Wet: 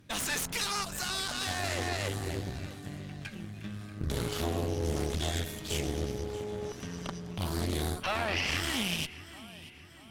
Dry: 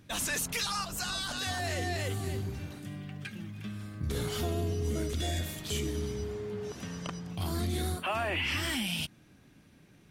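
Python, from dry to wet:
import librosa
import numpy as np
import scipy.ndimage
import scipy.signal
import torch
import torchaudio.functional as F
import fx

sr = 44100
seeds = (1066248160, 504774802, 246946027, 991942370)

y = fx.echo_feedback(x, sr, ms=636, feedback_pct=49, wet_db=-15.0)
y = fx.cheby_harmonics(y, sr, harmonics=(3, 4), levels_db=(-17, -8), full_scale_db=-11.0)
y = fx.doppler_dist(y, sr, depth_ms=0.23)
y = y * librosa.db_to_amplitude(3.5)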